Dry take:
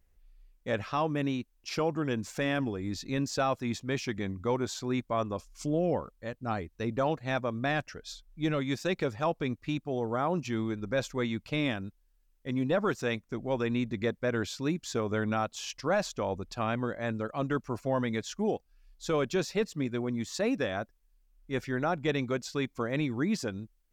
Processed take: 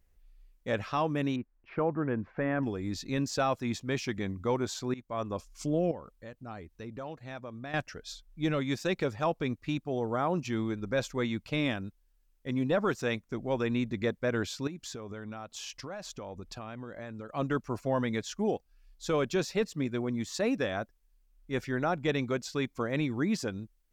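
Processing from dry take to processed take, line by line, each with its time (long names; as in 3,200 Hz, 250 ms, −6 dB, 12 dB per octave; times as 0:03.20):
0:01.36–0:02.63: low-pass filter 1,900 Hz 24 dB per octave
0:04.94–0:05.36: fade in, from −19 dB
0:05.91–0:07.74: downward compressor 2 to 1, threshold −46 dBFS
0:14.67–0:17.35: downward compressor 8 to 1, threshold −37 dBFS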